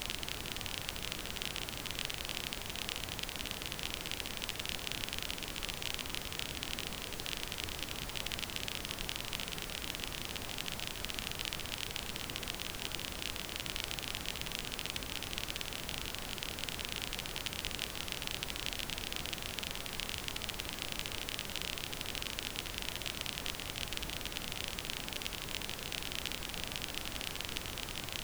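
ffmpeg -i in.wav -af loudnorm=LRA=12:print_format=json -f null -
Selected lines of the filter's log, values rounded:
"input_i" : "-38.6",
"input_tp" : "-14.5",
"input_lra" : "0.6",
"input_thresh" : "-48.6",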